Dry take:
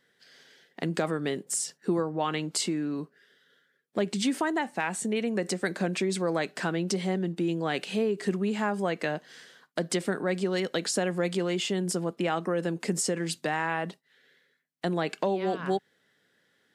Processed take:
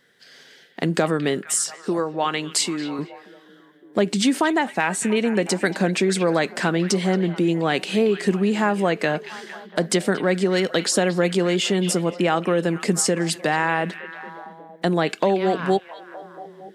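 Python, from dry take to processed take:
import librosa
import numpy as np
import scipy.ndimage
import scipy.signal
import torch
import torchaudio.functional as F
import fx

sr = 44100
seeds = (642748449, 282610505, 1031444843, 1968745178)

p1 = fx.low_shelf(x, sr, hz=330.0, db=-10.0, at=(1.8, 2.99))
p2 = p1 + fx.echo_stepped(p1, sr, ms=229, hz=2800.0, octaves=-0.7, feedback_pct=70, wet_db=-9.5, dry=0)
y = p2 * 10.0 ** (8.0 / 20.0)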